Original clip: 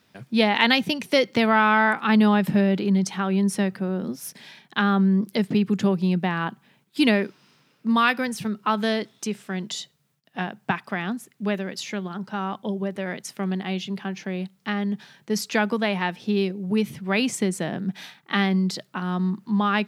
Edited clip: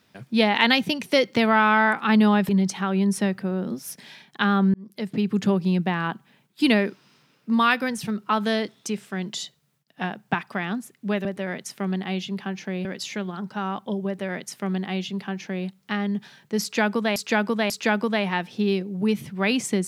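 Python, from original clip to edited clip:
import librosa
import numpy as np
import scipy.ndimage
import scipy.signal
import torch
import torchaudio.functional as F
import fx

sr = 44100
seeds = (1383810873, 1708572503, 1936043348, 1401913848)

y = fx.edit(x, sr, fx.cut(start_s=2.49, length_s=0.37),
    fx.fade_in_span(start_s=5.11, length_s=0.65),
    fx.duplicate(start_s=12.84, length_s=1.6, to_s=11.62),
    fx.repeat(start_s=15.39, length_s=0.54, count=3), tone=tone)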